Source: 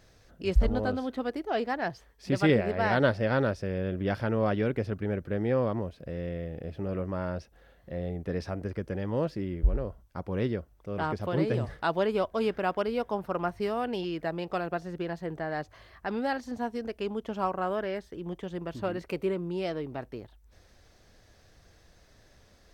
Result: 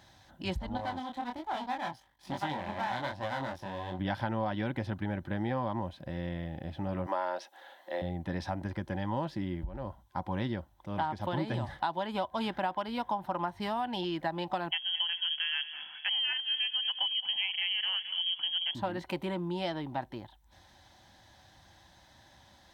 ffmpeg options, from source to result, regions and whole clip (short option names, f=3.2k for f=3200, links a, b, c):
-filter_complex "[0:a]asettb=1/sr,asplit=3[a][b][c];[a]atrim=end=0.774[d];[b]atrim=start=0.77:end=3.99,asetpts=PTS-STARTPTS,afade=t=in:d=0.004:c=qsin,afade=t=out:st=3.216:d=0.004:c=qsin,aeval=exprs='max(val(0),0)':c=same,flanger=delay=20:depth=5.7:speed=1.2[e];[c]atrim=start=3.986[f];[d][e]acrossfade=d=0.004:c1=hsin:c2=qsin[g];[g][f]acrossfade=d=0.004:c1=qsin:c2=hsin,asettb=1/sr,asplit=3[h][i][j];[h]atrim=end=7.064[k];[i]atrim=start=7.06:end=8.02,asetpts=PTS-STARTPTS,afade=t=in:d=0.004:c=qsin,afade=t=out:st=0.956:d=0.004:c=qsin,highpass=f=370:w=0.5412,highpass=f=370:w=1.3066,acontrast=55[l];[j]atrim=start=8.016[m];[k][l]acrossfade=d=0.004:c1=hsin:c2=qsin[n];[n][m]acrossfade=d=0.004:c1=qsin:c2=hsin,asettb=1/sr,asplit=3[o][p][q];[o]atrim=end=14.714[r];[p]atrim=start=14.71:end=18.75,asetpts=PTS-STARTPTS,afade=t=in:d=0.004:c=qsin,afade=t=out:st=4.036:d=0.004:c=qsin,asplit=2[s][t];[t]adelay=217,lowpass=f=2.2k:p=1,volume=-14dB,asplit=2[u][v];[v]adelay=217,lowpass=f=2.2k:p=1,volume=0.46,asplit=2[w][x];[x]adelay=217,lowpass=f=2.2k:p=1,volume=0.46,asplit=2[y][z];[z]adelay=217,lowpass=f=2.2k:p=1,volume=0.46[aa];[s][u][w][y][aa]amix=inputs=5:normalize=0,atrim=end_sample=178164,lowpass=f=2.9k:t=q:w=0.5098,lowpass=f=2.9k:t=q:w=0.6013,lowpass=f=2.9k:t=q:w=0.9,lowpass=f=2.9k:t=q:w=2.563,afreqshift=-3400[ab];[q]atrim=start=18.746[ac];[r][ab]acrossfade=d=0.004:c1=hsin:c2=qsin[ad];[ad][ac]acrossfade=d=0.004:c1=qsin:c2=hsin,superequalizer=7b=0.251:9b=3.16:11b=1.41:13b=2.24,acompressor=threshold=-28dB:ratio=10,highpass=70"